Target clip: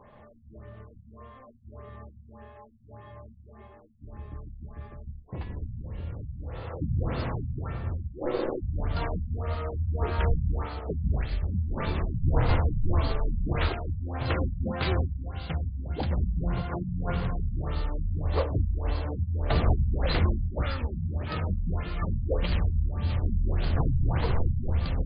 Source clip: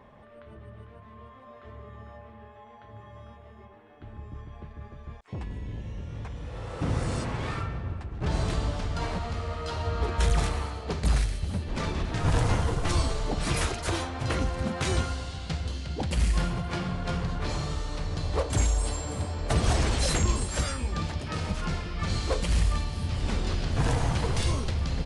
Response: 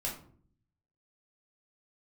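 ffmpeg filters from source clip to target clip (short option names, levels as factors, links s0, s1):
-filter_complex "[0:a]asplit=3[s0][s1][s2];[s0]afade=t=out:st=8.11:d=0.02[s3];[s1]aeval=exprs='val(0)*sin(2*PI*430*n/s)':c=same,afade=t=in:st=8.11:d=0.02,afade=t=out:st=8.61:d=0.02[s4];[s2]afade=t=in:st=8.61:d=0.02[s5];[s3][s4][s5]amix=inputs=3:normalize=0,bandreject=f=50:t=h:w=6,bandreject=f=100:t=h:w=6,bandreject=f=150:t=h:w=6,bandreject=f=200:t=h:w=6,bandreject=f=250:t=h:w=6,asplit=2[s6][s7];[1:a]atrim=start_sample=2205,afade=t=out:st=0.2:d=0.01,atrim=end_sample=9261,lowshelf=f=100:g=11[s8];[s7][s8]afir=irnorm=-1:irlink=0,volume=0.119[s9];[s6][s9]amix=inputs=2:normalize=0,afftfilt=real='re*lt(b*sr/1024,210*pow(5000/210,0.5+0.5*sin(2*PI*1.7*pts/sr)))':imag='im*lt(b*sr/1024,210*pow(5000/210,0.5+0.5*sin(2*PI*1.7*pts/sr)))':win_size=1024:overlap=0.75"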